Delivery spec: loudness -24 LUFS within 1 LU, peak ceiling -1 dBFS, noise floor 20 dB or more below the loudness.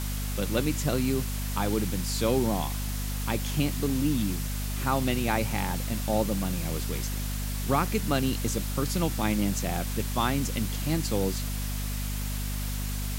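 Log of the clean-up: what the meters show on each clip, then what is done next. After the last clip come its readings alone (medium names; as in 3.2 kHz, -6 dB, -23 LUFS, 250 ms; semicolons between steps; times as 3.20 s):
hum 50 Hz; highest harmonic 250 Hz; hum level -29 dBFS; noise floor -31 dBFS; noise floor target -49 dBFS; loudness -29.0 LUFS; peak level -11.0 dBFS; loudness target -24.0 LUFS
-> hum notches 50/100/150/200/250 Hz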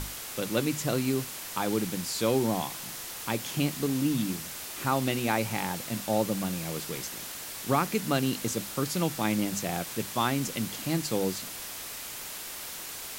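hum not found; noise floor -40 dBFS; noise floor target -50 dBFS
-> noise reduction 10 dB, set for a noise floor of -40 dBFS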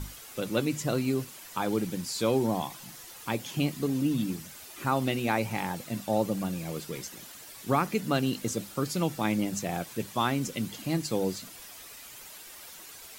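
noise floor -47 dBFS; noise floor target -51 dBFS
-> noise reduction 6 dB, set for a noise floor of -47 dBFS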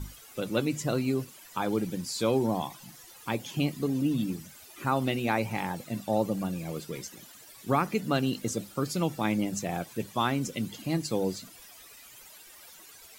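noise floor -51 dBFS; loudness -30.5 LUFS; peak level -12.0 dBFS; loudness target -24.0 LUFS
-> trim +6.5 dB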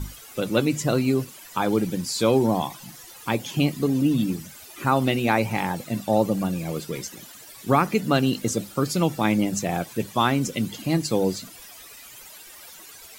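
loudness -24.0 LUFS; peak level -5.5 dBFS; noise floor -45 dBFS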